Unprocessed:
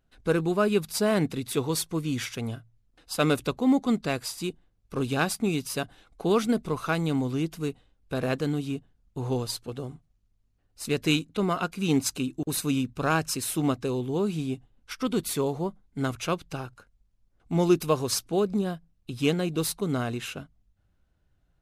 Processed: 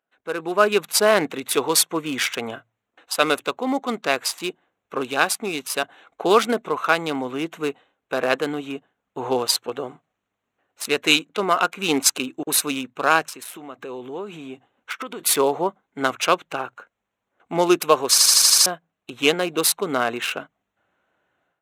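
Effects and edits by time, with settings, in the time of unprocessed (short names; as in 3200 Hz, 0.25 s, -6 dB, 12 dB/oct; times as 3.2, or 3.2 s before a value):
13.22–15.21 compressor 12:1, threshold -34 dBFS
18.1 stutter in place 0.08 s, 7 plays
whole clip: Wiener smoothing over 9 samples; Bessel high-pass 670 Hz, order 2; AGC gain up to 15.5 dB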